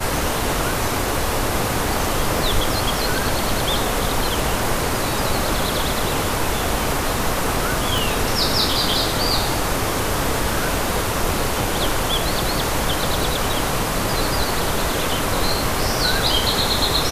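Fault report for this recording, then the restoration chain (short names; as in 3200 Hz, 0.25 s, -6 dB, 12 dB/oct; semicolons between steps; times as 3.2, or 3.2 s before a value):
7.98 pop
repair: de-click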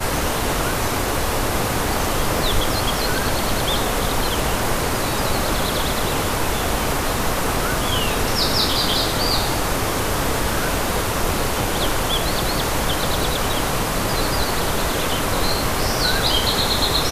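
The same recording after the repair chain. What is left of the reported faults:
7.98 pop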